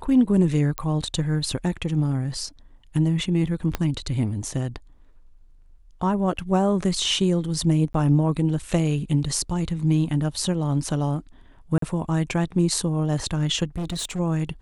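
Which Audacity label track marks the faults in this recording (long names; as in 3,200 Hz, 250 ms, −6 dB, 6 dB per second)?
0.780000	0.780000	click −10 dBFS
3.750000	3.750000	click −10 dBFS
7.930000	7.940000	drop-out 13 ms
11.780000	11.820000	drop-out 43 ms
13.760000	14.200000	clipping −25 dBFS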